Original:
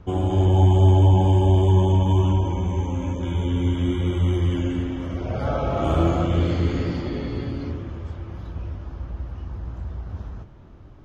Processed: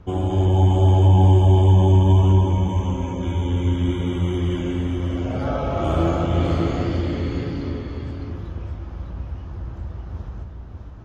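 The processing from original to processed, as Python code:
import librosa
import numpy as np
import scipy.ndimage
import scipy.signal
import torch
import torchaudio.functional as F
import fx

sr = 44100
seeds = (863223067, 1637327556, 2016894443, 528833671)

y = x + 10.0 ** (-5.0 / 20.0) * np.pad(x, (int(605 * sr / 1000.0), 0))[:len(x)]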